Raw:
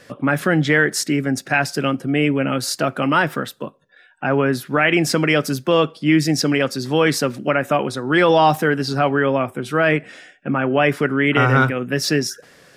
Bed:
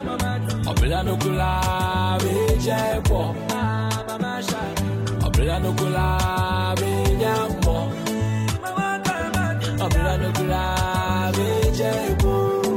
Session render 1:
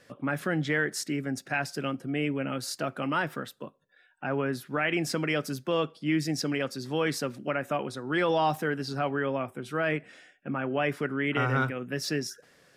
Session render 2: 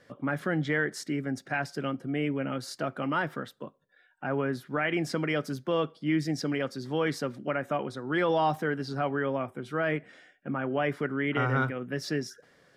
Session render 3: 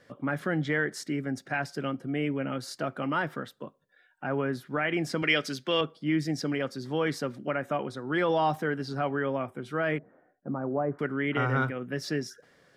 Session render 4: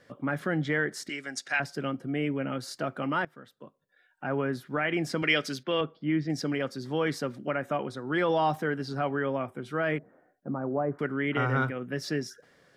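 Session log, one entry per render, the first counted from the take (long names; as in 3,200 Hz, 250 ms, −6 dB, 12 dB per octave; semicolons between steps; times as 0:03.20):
level −11.5 dB
high-shelf EQ 5,200 Hz −10 dB; notch filter 2,600 Hz, Q 11
0:05.22–0:05.81: meter weighting curve D; 0:09.98–0:10.99: low-pass filter 1,100 Hz 24 dB per octave
0:01.09–0:01.60: meter weighting curve ITU-R 468; 0:03.25–0:04.30: fade in, from −19.5 dB; 0:05.63–0:06.30: high-frequency loss of the air 240 metres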